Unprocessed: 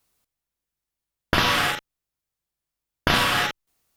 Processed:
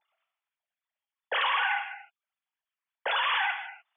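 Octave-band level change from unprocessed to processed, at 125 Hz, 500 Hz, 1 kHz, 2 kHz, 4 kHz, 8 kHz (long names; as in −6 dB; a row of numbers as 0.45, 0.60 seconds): below −40 dB, −9.5 dB, −3.5 dB, −4.0 dB, −7.5 dB, below −40 dB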